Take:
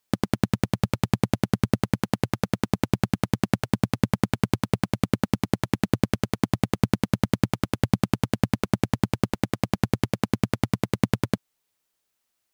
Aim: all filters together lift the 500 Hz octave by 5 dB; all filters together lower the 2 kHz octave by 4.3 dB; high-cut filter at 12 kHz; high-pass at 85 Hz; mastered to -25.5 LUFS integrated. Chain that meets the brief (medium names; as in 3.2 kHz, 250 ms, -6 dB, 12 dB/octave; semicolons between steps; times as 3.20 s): high-pass 85 Hz; low-pass 12 kHz; peaking EQ 500 Hz +6.5 dB; peaking EQ 2 kHz -6 dB; trim -0.5 dB